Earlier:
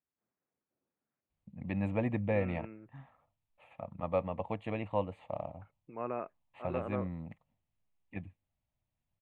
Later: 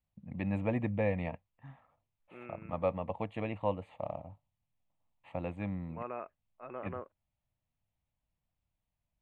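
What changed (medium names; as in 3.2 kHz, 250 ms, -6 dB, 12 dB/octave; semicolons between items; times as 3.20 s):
first voice: entry -1.30 s; second voice: add bass shelf 470 Hz -9 dB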